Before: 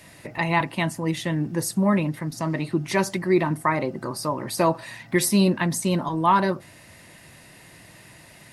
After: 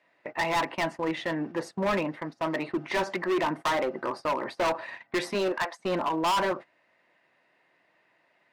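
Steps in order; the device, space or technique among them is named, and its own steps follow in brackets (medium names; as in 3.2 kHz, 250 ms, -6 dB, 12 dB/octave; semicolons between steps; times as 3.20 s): 5.33–5.78 s: high-pass 210 Hz -> 730 Hz 24 dB/octave; walkie-talkie (band-pass 440–2200 Hz; hard clipper -27 dBFS, distortion -5 dB; gate -41 dBFS, range -18 dB); trim +4 dB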